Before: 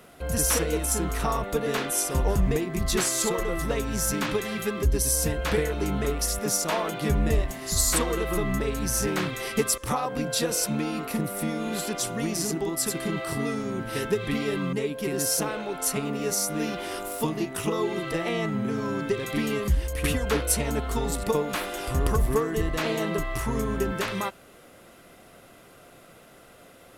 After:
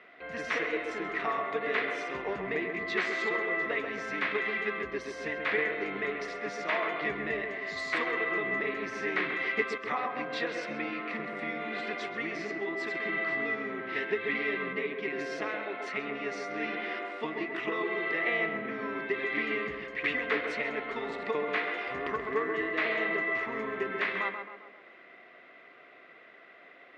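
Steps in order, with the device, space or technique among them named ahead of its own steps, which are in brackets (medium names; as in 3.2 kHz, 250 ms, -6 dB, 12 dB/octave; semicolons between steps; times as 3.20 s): phone earpiece (cabinet simulation 480–3100 Hz, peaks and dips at 530 Hz -7 dB, 870 Hz -9 dB, 1.4 kHz -4 dB, 2 kHz +9 dB, 3 kHz -4 dB); tape echo 134 ms, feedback 57%, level -4.5 dB, low-pass 1.6 kHz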